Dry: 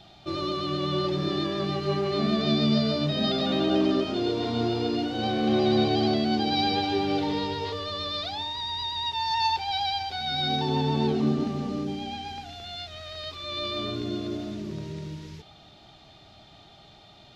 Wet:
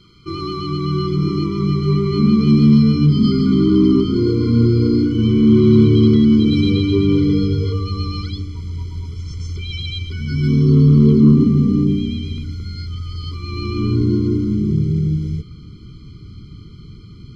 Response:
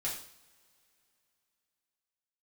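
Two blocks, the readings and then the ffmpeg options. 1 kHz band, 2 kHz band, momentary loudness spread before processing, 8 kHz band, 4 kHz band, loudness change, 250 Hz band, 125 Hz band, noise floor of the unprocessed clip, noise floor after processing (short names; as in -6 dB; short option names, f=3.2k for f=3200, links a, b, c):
-6.0 dB, 0.0 dB, 13 LU, n/a, -2.0 dB, +11.5 dB, +13.5 dB, +18.0 dB, -52 dBFS, -38 dBFS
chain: -af "asubboost=boost=8:cutoff=240,acontrast=65,afftfilt=real='re*eq(mod(floor(b*sr/1024/490),2),0)':imag='im*eq(mod(floor(b*sr/1024/490),2),0)':win_size=1024:overlap=0.75,volume=-1.5dB"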